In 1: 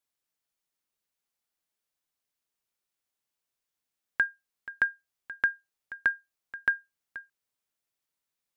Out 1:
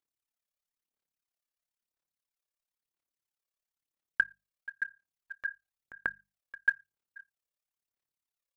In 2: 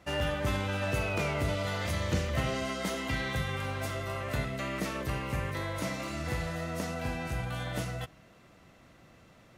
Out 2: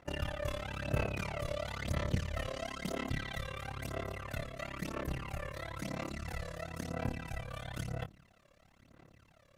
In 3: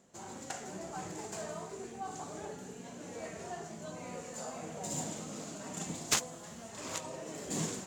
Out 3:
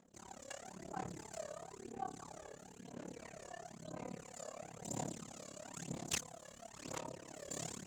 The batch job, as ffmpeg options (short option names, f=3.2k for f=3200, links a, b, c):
-af "tremolo=f=35:d=1,aphaser=in_gain=1:out_gain=1:delay=1.8:decay=0.6:speed=1:type=sinusoidal,bandreject=f=50:t=h:w=6,bandreject=f=100:t=h:w=6,bandreject=f=150:t=h:w=6,bandreject=f=200:t=h:w=6,volume=-5dB"